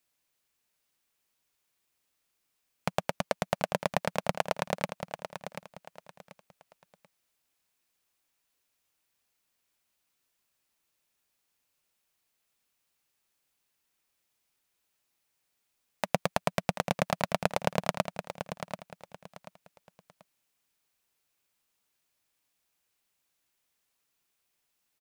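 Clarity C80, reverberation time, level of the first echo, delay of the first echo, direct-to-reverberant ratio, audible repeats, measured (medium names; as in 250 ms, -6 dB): no reverb, no reverb, -9.5 dB, 736 ms, no reverb, 3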